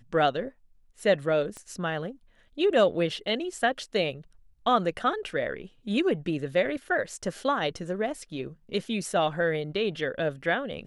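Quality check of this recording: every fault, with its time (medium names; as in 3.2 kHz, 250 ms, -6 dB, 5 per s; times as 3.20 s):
1.57 s: pop -26 dBFS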